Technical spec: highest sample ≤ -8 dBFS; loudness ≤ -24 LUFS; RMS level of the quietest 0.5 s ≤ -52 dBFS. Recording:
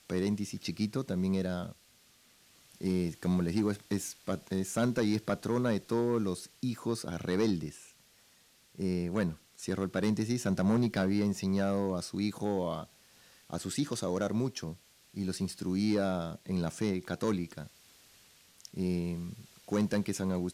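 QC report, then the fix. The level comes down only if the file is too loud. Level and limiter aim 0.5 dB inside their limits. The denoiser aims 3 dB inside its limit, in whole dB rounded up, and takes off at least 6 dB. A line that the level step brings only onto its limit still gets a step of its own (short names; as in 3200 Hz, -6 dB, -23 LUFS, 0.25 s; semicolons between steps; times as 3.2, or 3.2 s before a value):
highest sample -20.5 dBFS: OK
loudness -33.0 LUFS: OK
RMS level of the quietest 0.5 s -64 dBFS: OK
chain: none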